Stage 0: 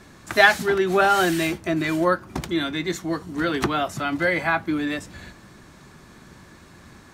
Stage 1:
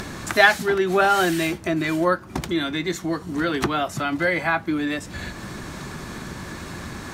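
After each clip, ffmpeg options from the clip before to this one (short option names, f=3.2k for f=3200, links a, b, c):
-af "acompressor=mode=upward:threshold=-21dB:ratio=2.5"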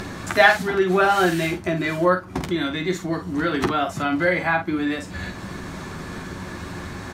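-filter_complex "[0:a]highshelf=f=4.2k:g=-6,asplit=2[a][b];[b]aecho=0:1:11|49:0.473|0.422[c];[a][c]amix=inputs=2:normalize=0"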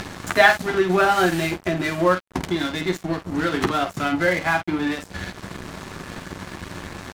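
-filter_complex "[0:a]asplit=2[a][b];[b]acompressor=threshold=-28dB:ratio=10,volume=-1.5dB[c];[a][c]amix=inputs=2:normalize=0,aeval=exprs='sgn(val(0))*max(abs(val(0))-0.0335,0)':c=same"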